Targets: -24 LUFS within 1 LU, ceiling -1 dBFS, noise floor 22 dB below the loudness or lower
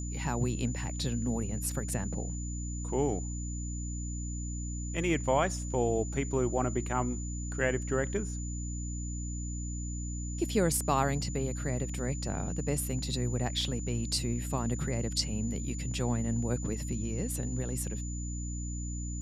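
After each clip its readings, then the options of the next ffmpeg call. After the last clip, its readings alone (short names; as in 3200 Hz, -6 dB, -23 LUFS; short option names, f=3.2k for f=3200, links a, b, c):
hum 60 Hz; harmonics up to 300 Hz; hum level -34 dBFS; steady tone 7000 Hz; tone level -43 dBFS; loudness -33.0 LUFS; peak -14.0 dBFS; loudness target -24.0 LUFS
-> -af "bandreject=f=60:t=h:w=6,bandreject=f=120:t=h:w=6,bandreject=f=180:t=h:w=6,bandreject=f=240:t=h:w=6,bandreject=f=300:t=h:w=6"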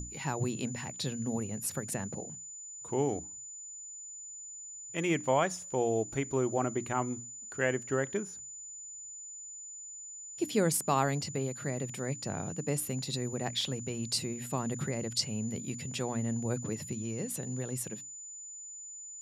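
hum none; steady tone 7000 Hz; tone level -43 dBFS
-> -af "bandreject=f=7k:w=30"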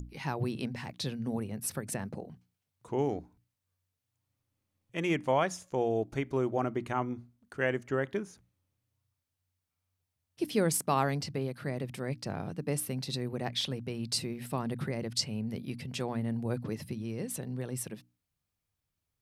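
steady tone none; loudness -34.0 LUFS; peak -15.0 dBFS; loudness target -24.0 LUFS
-> -af "volume=10dB"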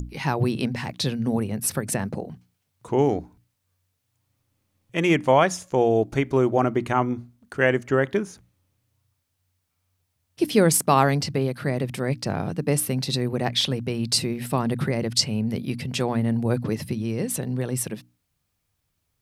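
loudness -24.0 LUFS; peak -5.0 dBFS; noise floor -76 dBFS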